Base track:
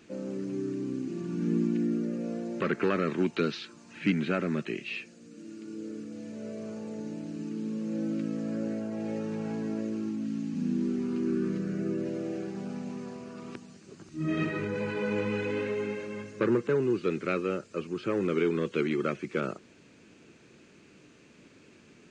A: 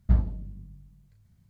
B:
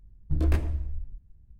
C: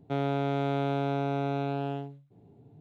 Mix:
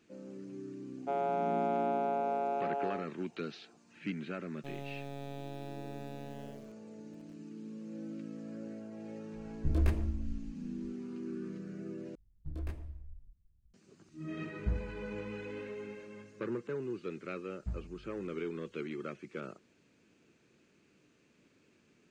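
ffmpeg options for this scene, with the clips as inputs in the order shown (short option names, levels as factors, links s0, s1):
-filter_complex "[3:a]asplit=2[s0][s1];[2:a]asplit=2[s2][s3];[1:a]asplit=2[s4][s5];[0:a]volume=0.266[s6];[s0]highpass=f=450:w=0.5412,highpass=f=450:w=1.3066,equalizer=f=490:t=q:w=4:g=7,equalizer=f=760:t=q:w=4:g=8,equalizer=f=1800:t=q:w=4:g=-8,lowpass=f=2500:w=0.5412,lowpass=f=2500:w=1.3066[s7];[s1]acrusher=bits=5:dc=4:mix=0:aa=0.000001[s8];[s6]asplit=2[s9][s10];[s9]atrim=end=12.154[s11];[s3]atrim=end=1.59,asetpts=PTS-STARTPTS,volume=0.168[s12];[s10]atrim=start=13.736[s13];[s7]atrim=end=2.8,asetpts=PTS-STARTPTS,volume=0.631,afade=t=in:d=0.004:c=hsin,afade=t=out:st=2.796:d=0.004:c=hsin,adelay=970[s14];[s8]atrim=end=2.8,asetpts=PTS-STARTPTS,volume=0.237,afade=t=in:d=0.004:c=hsin,afade=t=out:st=2.796:d=0.004:c=hsin,adelay=4540[s15];[s2]atrim=end=1.59,asetpts=PTS-STARTPTS,volume=0.562,afade=t=in:d=0.004:c=hsin,afade=t=out:st=1.586:d=0.004:c=hsin,adelay=9340[s16];[s4]atrim=end=1.49,asetpts=PTS-STARTPTS,volume=0.251,afade=t=in:d=0.004:c=hsin,afade=t=out:st=1.486:d=0.004:c=hsin,adelay=14570[s17];[s5]atrim=end=1.49,asetpts=PTS-STARTPTS,volume=0.133,afade=t=in:d=0.004:c=hsin,afade=t=out:st=1.486:d=0.004:c=hsin,adelay=17570[s18];[s11][s12]acrossfade=d=0.004:c1=hsin:c2=hsin[s19];[s19][s13]acrossfade=d=0.004:c1=hsin:c2=hsin[s20];[s20][s14][s15][s16][s17][s18]amix=inputs=6:normalize=0"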